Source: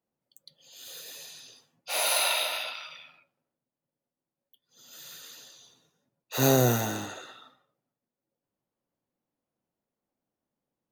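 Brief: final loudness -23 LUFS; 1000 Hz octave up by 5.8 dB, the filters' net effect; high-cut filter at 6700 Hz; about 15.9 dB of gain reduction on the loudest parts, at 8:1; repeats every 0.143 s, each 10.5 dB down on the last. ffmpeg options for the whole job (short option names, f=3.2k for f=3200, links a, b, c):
-af "lowpass=6.7k,equalizer=f=1k:t=o:g=8,acompressor=threshold=-33dB:ratio=8,aecho=1:1:143|286|429:0.299|0.0896|0.0269,volume=16dB"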